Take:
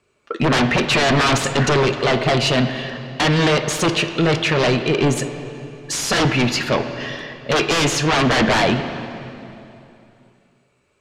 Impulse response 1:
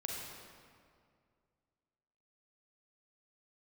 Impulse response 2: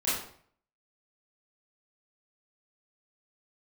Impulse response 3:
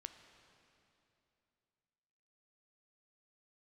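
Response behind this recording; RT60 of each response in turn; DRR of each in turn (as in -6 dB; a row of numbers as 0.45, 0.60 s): 3; 2.2, 0.55, 2.8 s; -2.0, -11.0, 7.5 dB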